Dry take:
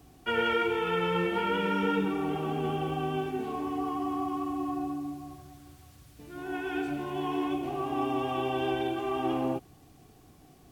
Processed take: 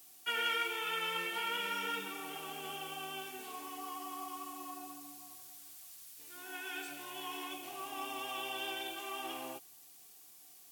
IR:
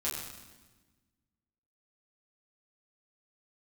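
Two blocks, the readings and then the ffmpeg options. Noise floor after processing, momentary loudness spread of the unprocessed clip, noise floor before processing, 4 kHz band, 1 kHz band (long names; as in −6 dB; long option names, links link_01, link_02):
−58 dBFS, 8 LU, −56 dBFS, +1.0 dB, −9.0 dB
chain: -af "aderivative,volume=8dB"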